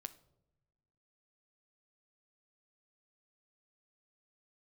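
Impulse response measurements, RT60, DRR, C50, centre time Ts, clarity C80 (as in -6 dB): not exponential, 11.0 dB, 16.5 dB, 4 ms, 20.5 dB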